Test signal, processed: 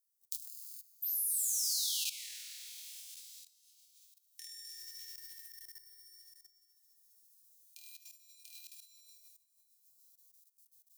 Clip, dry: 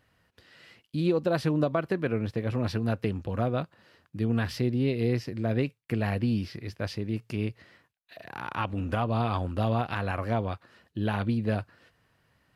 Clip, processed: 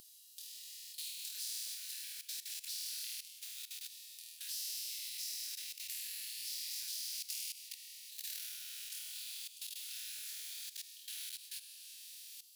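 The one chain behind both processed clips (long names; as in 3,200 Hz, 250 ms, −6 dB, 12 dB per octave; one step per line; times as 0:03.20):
feedback delay that plays each chunk backwards 133 ms, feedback 51%, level −11 dB
leveller curve on the samples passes 1
coupled-rooms reverb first 0.25 s, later 2.1 s, from −18 dB, DRR −0.5 dB
brickwall limiter −16 dBFS
downward compressor 12 to 1, threshold −27 dBFS
first difference
flutter between parallel walls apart 4.3 metres, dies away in 0.94 s
output level in coarse steps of 17 dB
inverse Chebyshev high-pass filter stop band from 1,200 Hz, stop band 60 dB
every bin compressed towards the loudest bin 2 to 1
level +13 dB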